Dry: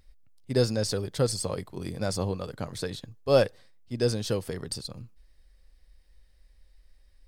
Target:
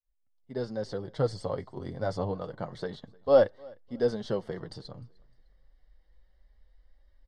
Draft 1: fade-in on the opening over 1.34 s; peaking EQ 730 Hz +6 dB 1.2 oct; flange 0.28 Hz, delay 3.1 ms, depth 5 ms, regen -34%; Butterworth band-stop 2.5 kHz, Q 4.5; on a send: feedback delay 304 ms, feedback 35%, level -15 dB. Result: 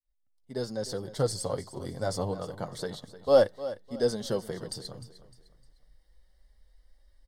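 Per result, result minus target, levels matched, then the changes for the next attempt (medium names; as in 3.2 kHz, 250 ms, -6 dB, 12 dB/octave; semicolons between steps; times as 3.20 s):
echo-to-direct +11.5 dB; 4 kHz band +6.5 dB
change: feedback delay 304 ms, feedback 35%, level -26.5 dB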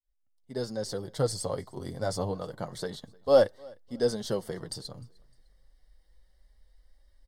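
4 kHz band +6.5 dB
add after fade-in on the opening: low-pass 3.2 kHz 12 dB/octave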